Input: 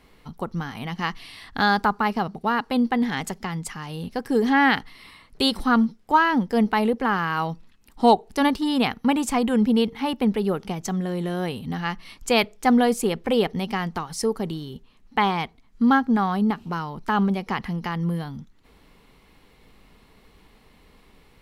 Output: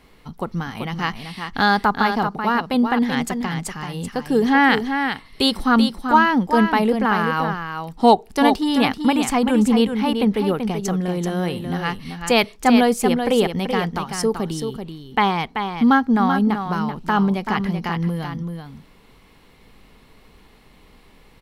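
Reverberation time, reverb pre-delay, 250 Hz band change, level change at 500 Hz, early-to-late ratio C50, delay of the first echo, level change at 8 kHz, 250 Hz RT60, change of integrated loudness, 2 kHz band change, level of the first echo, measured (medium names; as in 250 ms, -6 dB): no reverb, no reverb, +4.0 dB, +3.5 dB, no reverb, 384 ms, +4.0 dB, no reverb, +3.5 dB, +4.0 dB, -7.0 dB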